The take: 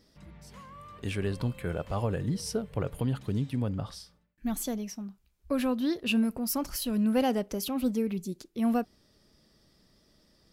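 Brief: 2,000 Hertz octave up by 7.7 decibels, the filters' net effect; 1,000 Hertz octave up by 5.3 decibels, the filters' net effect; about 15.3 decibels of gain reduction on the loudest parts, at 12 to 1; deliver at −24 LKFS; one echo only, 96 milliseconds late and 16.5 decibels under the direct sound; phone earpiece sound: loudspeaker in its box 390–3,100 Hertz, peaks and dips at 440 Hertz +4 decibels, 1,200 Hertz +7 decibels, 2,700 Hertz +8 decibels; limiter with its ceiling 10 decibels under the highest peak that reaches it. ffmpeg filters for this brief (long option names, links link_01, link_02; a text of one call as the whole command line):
ffmpeg -i in.wav -af "equalizer=frequency=1000:width_type=o:gain=3.5,equalizer=frequency=2000:width_type=o:gain=3.5,acompressor=threshold=-37dB:ratio=12,alimiter=level_in=11.5dB:limit=-24dB:level=0:latency=1,volume=-11.5dB,highpass=390,equalizer=frequency=440:width_type=q:width=4:gain=4,equalizer=frequency=1200:width_type=q:width=4:gain=7,equalizer=frequency=2700:width_type=q:width=4:gain=8,lowpass=frequency=3100:width=0.5412,lowpass=frequency=3100:width=1.3066,aecho=1:1:96:0.15,volume=23dB" out.wav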